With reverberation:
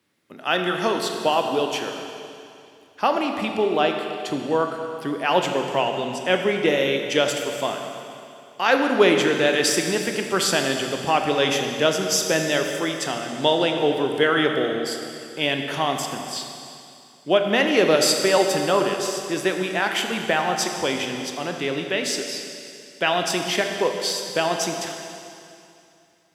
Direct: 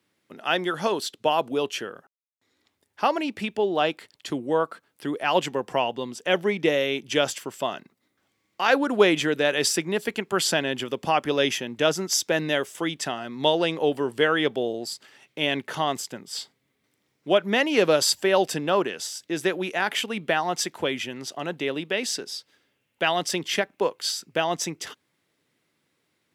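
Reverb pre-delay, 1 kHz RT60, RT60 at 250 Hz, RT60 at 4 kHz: 22 ms, 2.6 s, 2.6 s, 2.6 s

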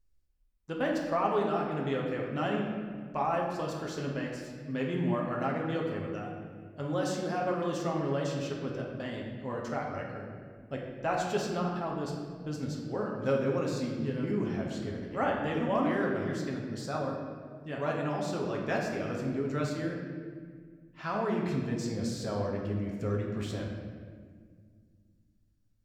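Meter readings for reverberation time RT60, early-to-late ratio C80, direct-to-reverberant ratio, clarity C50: 1.9 s, 3.5 dB, -2.0 dB, 2.0 dB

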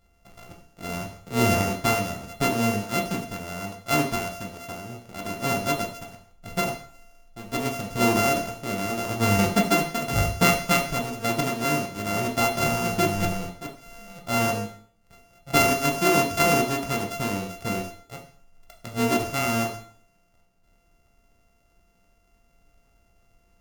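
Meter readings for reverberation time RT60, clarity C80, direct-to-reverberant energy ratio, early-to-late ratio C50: 0.55 s, 12.5 dB, 1.5 dB, 9.0 dB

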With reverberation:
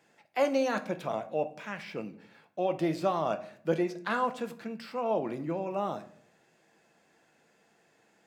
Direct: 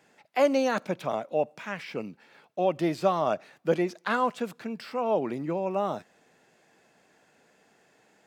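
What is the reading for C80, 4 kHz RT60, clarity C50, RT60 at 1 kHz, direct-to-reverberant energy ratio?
18.5 dB, 0.40 s, 14.5 dB, 0.50 s, 8.0 dB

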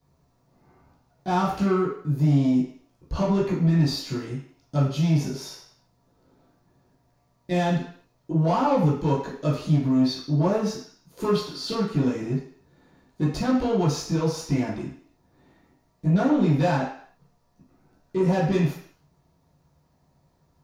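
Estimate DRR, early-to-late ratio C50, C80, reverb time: -11.0 dB, 4.5 dB, 8.0 dB, 0.55 s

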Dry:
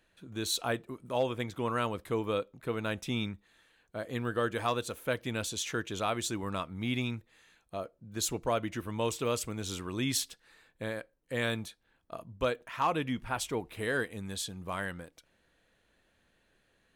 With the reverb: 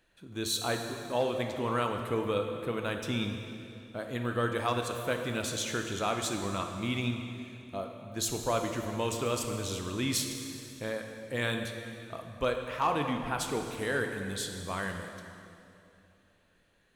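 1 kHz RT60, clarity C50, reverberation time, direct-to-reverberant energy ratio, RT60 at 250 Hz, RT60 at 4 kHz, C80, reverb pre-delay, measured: 2.6 s, 5.5 dB, 2.7 s, 4.0 dB, 3.2 s, 2.4 s, 6.5 dB, 15 ms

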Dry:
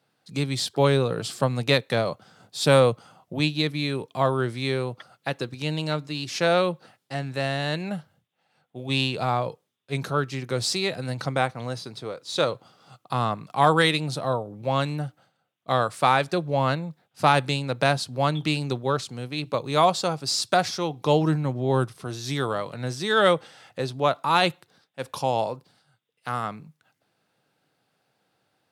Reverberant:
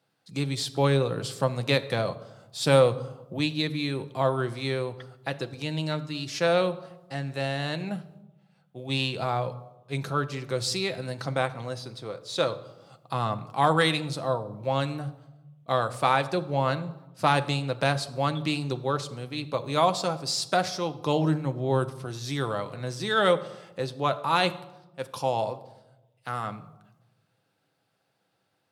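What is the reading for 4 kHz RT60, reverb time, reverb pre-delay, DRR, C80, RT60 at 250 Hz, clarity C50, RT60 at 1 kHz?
0.65 s, 1.0 s, 6 ms, 9.0 dB, 18.0 dB, 1.2 s, 16.0 dB, 0.95 s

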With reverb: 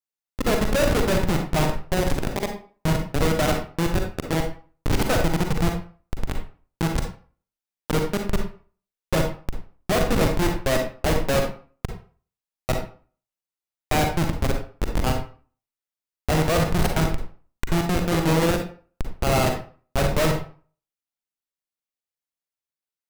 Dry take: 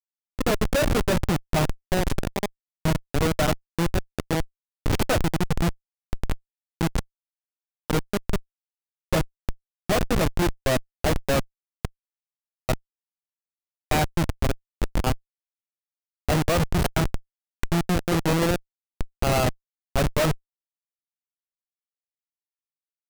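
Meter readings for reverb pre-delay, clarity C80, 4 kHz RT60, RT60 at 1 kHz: 38 ms, 10.5 dB, 0.30 s, 0.40 s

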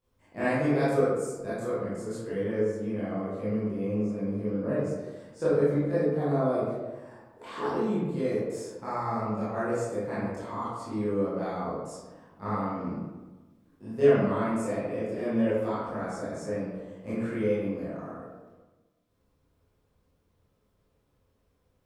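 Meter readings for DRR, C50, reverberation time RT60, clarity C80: -12.0 dB, -3.0 dB, 1.2 s, 1.0 dB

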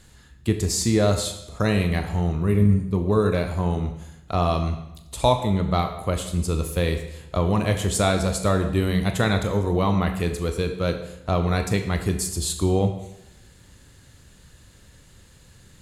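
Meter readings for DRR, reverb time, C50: 5.5 dB, 0.85 s, 8.5 dB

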